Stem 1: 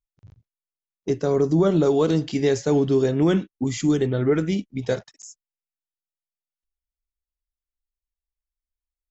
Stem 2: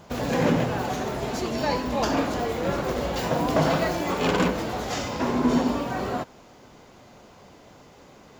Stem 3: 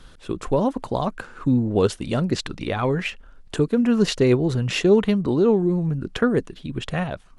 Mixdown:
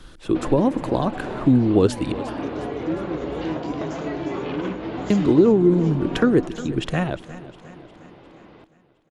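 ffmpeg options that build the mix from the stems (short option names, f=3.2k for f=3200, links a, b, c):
-filter_complex "[0:a]acompressor=threshold=-35dB:ratio=2,adelay=1350,volume=-5dB,asplit=2[a][b];[b]volume=-8.5dB[c];[1:a]lowpass=f=3.6k:w=0.5412,lowpass=f=3.6k:w=1.3066,acompressor=threshold=-30dB:ratio=6,adelay=250,volume=1dB,asplit=2[d][e];[e]volume=-17dB[f];[2:a]volume=2dB,asplit=3[g][h][i];[g]atrim=end=2.12,asetpts=PTS-STARTPTS,afade=t=out:st=2.116:d=0.004:c=hsin[j];[h]atrim=start=2.12:end=5.1,asetpts=PTS-STARTPTS,volume=0[k];[i]atrim=start=5.1,asetpts=PTS-STARTPTS,afade=t=in:d=0.004:c=hsin[l];[j][k][l]concat=n=3:v=0:a=1,asplit=3[m][n][o];[n]volume=-17dB[p];[o]apad=whole_len=381090[q];[d][q]sidechaincompress=threshold=-18dB:ratio=8:attack=35:release=472[r];[c][f][p]amix=inputs=3:normalize=0,aecho=0:1:356|712|1068|1424|1780|2136|2492|2848:1|0.53|0.281|0.149|0.0789|0.0418|0.0222|0.0117[s];[a][r][m][s]amix=inputs=4:normalize=0,equalizer=f=320:t=o:w=0.24:g=10,acrossover=split=400[t][u];[u]acompressor=threshold=-21dB:ratio=2.5[v];[t][v]amix=inputs=2:normalize=0"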